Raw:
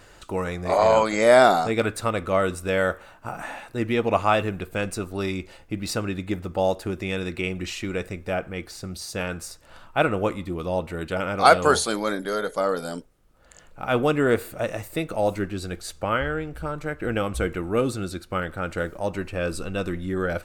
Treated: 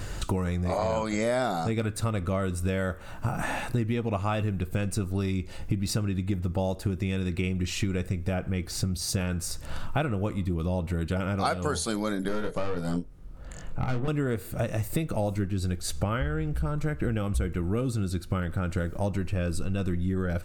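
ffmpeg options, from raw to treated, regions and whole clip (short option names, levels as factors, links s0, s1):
-filter_complex "[0:a]asettb=1/sr,asplit=3[s0][s1][s2];[s0]atrim=end=12.284[s3];[s1]atrim=start=12.28:end=14.08,asetpts=PTS-STARTPTS,afade=t=in:d=0.004:c=qsin,afade=t=out:st=1.796:d=0.004:c=qsin,highshelf=f=3800:g=-10.5,aeval=exprs='(tanh(15.8*val(0)+0.5)-tanh(0.5))/15.8':c=same,asplit=2[s4][s5];[s5]adelay=23,volume=0.562[s6];[s4][s6]amix=inputs=2:normalize=0,atrim=end_sample=79380[s7];[s2]atrim=start=14.076[s8];[s3][s7]acrossfade=d=0.004:c1=hsin:c2=qsin[s9];[s9][s8]acrossfade=d=0.004:c1=qsin:c2=hsin,bass=f=250:g=13,treble=f=4000:g=4,acompressor=threshold=0.0251:ratio=8,volume=2.24"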